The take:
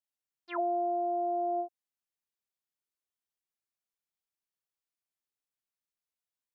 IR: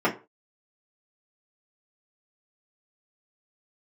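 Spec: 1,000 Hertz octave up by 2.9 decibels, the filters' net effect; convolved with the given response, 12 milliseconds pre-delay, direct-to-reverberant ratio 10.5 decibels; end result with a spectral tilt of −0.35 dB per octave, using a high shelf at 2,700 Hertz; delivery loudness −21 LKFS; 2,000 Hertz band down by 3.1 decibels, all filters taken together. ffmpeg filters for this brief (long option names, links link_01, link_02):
-filter_complex "[0:a]equalizer=frequency=1000:width_type=o:gain=7,equalizer=frequency=2000:width_type=o:gain=-4.5,highshelf=frequency=2700:gain=-4,asplit=2[link_01][link_02];[1:a]atrim=start_sample=2205,adelay=12[link_03];[link_02][link_03]afir=irnorm=-1:irlink=0,volume=-26dB[link_04];[link_01][link_04]amix=inputs=2:normalize=0,volume=8.5dB"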